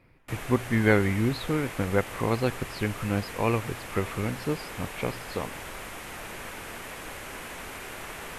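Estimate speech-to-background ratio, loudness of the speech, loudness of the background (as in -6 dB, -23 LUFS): 10.0 dB, -28.5 LUFS, -38.5 LUFS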